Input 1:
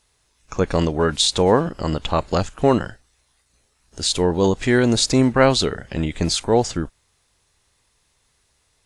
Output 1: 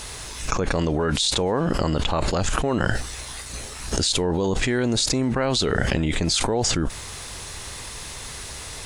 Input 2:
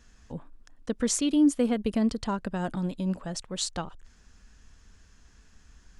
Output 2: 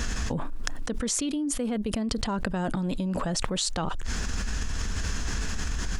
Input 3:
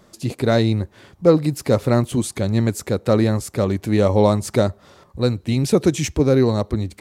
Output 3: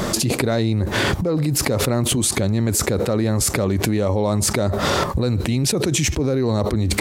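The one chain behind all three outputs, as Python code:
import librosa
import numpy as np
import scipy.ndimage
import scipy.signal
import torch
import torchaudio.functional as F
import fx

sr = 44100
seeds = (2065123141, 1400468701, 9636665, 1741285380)

y = fx.env_flatten(x, sr, amount_pct=100)
y = y * librosa.db_to_amplitude(-10.5)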